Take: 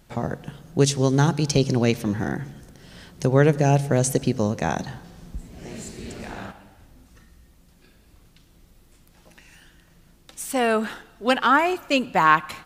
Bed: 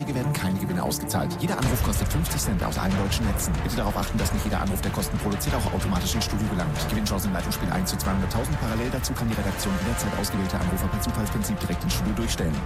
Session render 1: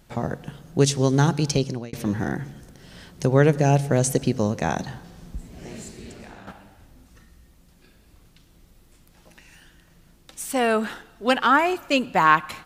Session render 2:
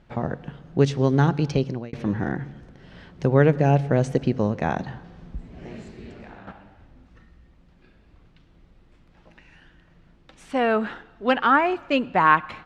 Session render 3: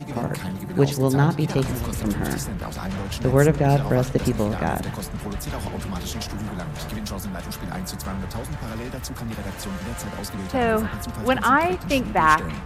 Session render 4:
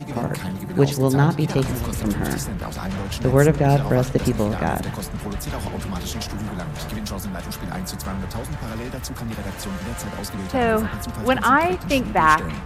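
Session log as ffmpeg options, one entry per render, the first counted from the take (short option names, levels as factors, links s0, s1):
-filter_complex "[0:a]asplit=3[s0][s1][s2];[s0]atrim=end=1.93,asetpts=PTS-STARTPTS,afade=t=out:st=1.46:d=0.47[s3];[s1]atrim=start=1.93:end=6.47,asetpts=PTS-STARTPTS,afade=t=in:d=0.004:c=hsin,afade=t=out:st=3.64:d=0.9:silence=0.298538[s4];[s2]atrim=start=6.47,asetpts=PTS-STARTPTS,afade=t=in:d=0.004:c=hsin:silence=0.298538[s5];[s3][s4][s5]concat=n=3:v=0:a=1"
-af "lowpass=2700"
-filter_complex "[1:a]volume=0.562[s0];[0:a][s0]amix=inputs=2:normalize=0"
-af "volume=1.19,alimiter=limit=0.794:level=0:latency=1"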